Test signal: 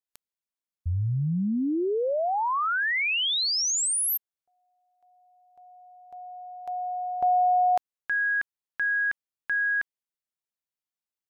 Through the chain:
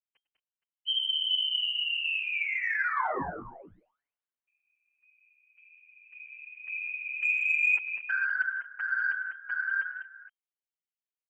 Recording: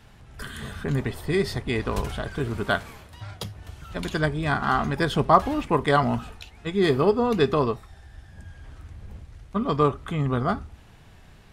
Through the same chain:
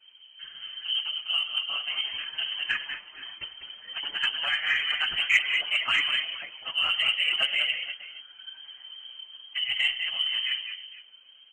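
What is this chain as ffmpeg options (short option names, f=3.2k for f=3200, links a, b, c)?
-filter_complex "[0:a]aecho=1:1:101|198|226|467:0.126|0.422|0.119|0.133,afftfilt=real='hypot(re,im)*cos(2*PI*random(0))':imag='hypot(re,im)*sin(2*PI*random(1))':win_size=512:overlap=0.75,tiltshelf=f=790:g=6,acrossover=split=1100[a][b];[b]dynaudnorm=f=210:g=21:m=12dB[c];[a][c]amix=inputs=2:normalize=0,lowpass=f=2.7k:t=q:w=0.5098,lowpass=f=2.7k:t=q:w=0.6013,lowpass=f=2.7k:t=q:w=0.9,lowpass=f=2.7k:t=q:w=2.563,afreqshift=-3200,acontrast=52,asplit=2[d][e];[e]adelay=6.1,afreqshift=2.6[f];[d][f]amix=inputs=2:normalize=1,volume=-6.5dB"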